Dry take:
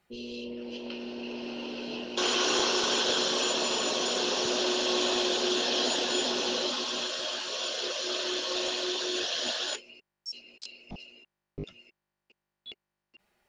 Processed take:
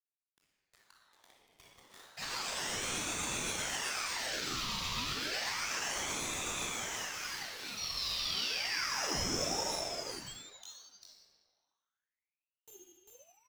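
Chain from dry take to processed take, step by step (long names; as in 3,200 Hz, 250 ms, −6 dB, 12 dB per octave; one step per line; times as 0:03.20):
spectral dynamics exaggerated over time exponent 2
high-pass filter 640 Hz 12 dB per octave
parametric band 1,300 Hz −5.5 dB 0.98 octaves
notch filter 870 Hz, Q 12
in parallel at +1.5 dB: downward compressor 20 to 1, threshold −50 dBFS, peak gain reduction 20.5 dB
on the sum: brickwall limiter −27.5 dBFS, peak gain reduction 7.5 dB
centre clipping without the shift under −41.5 dBFS
rotating-speaker cabinet horn 8 Hz, later 1.1 Hz, at 0:06.44
sound drawn into the spectrogram fall, 0:07.77–0:09.60, 2,100–5,100 Hz −40 dBFS
single-tap delay 397 ms −3.5 dB
rectangular room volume 3,400 cubic metres, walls mixed, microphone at 6.3 metres
ring modulator whose carrier an LFO sweeps 1,800 Hz, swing 70%, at 0.31 Hz
level −3 dB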